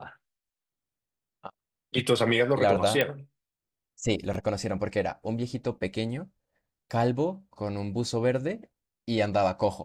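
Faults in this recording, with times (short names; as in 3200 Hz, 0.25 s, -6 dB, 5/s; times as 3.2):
3.01 pop -11 dBFS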